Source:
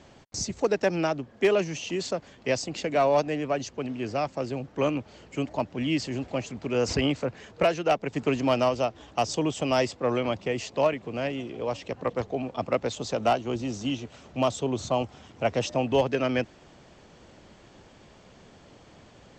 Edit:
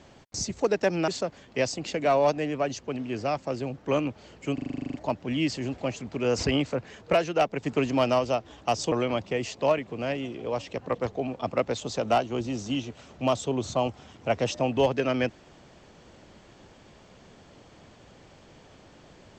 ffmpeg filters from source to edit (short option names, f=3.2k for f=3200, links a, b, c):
-filter_complex "[0:a]asplit=13[a][b][c][d][e][f][g][h][i][j][k][l][m];[a]atrim=end=1.082[n];[b]atrim=start=1.978:end=5.482[o];[c]atrim=start=5.438:end=5.482[p];[d]atrim=start=5.438:end=5.482[q];[e]atrim=start=5.438:end=5.482[r];[f]atrim=start=5.438:end=5.482[s];[g]atrim=start=5.438:end=5.482[t];[h]atrim=start=5.438:end=5.482[u];[i]atrim=start=5.438:end=5.482[v];[j]atrim=start=5.438:end=5.482[w];[k]atrim=start=5.438:end=5.482[x];[l]atrim=start=5.438:end=9.422[y];[m]atrim=start=10.068[z];[n][o]acrossfade=d=0.004:c1=hsin:c2=hsin[aa];[aa][p]acrossfade=d=0.004:c1=hsin:c2=hsin[ab];[ab][q]acrossfade=d=0.004:c1=hsin:c2=hsin[ac];[ac][r]acrossfade=d=0.004:c1=hsin:c2=hsin[ad];[ad][s]acrossfade=d=0.004:c1=hsin:c2=hsin[ae];[ae][t]acrossfade=d=0.004:c1=hsin:c2=hsin[af];[af][u]acrossfade=d=0.004:c1=hsin:c2=hsin[ag];[ag][v]acrossfade=d=0.004:c1=hsin:c2=hsin[ah];[ah][w]acrossfade=d=0.004:c1=hsin:c2=hsin[ai];[ai][x]acrossfade=d=0.004:c1=hsin:c2=hsin[aj];[aj][y]acrossfade=d=0.004:c1=hsin:c2=hsin[ak];[ak][z]acrossfade=d=0.004:c1=hsin:c2=hsin"